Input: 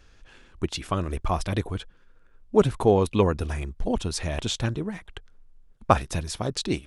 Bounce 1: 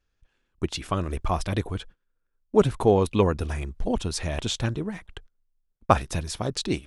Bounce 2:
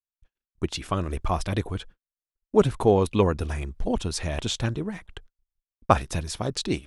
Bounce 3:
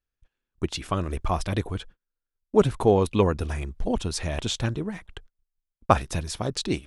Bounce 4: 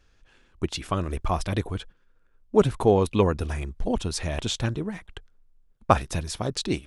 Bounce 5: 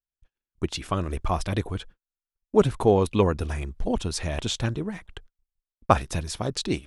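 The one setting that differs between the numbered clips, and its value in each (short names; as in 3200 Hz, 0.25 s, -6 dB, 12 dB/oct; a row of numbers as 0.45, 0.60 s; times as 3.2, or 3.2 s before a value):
gate, range: -21, -58, -33, -7, -45 dB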